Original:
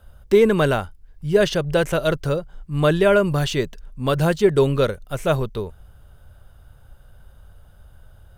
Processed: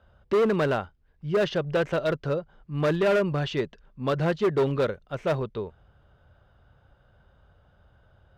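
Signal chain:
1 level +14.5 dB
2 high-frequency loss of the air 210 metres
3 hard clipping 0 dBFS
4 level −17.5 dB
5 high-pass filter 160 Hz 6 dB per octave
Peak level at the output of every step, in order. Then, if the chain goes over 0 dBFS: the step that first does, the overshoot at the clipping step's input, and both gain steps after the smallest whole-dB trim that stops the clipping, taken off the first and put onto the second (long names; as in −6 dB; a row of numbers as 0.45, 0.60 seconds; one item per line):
+10.5, +9.5, 0.0, −17.5, −14.0 dBFS
step 1, 9.5 dB
step 1 +4.5 dB, step 4 −7.5 dB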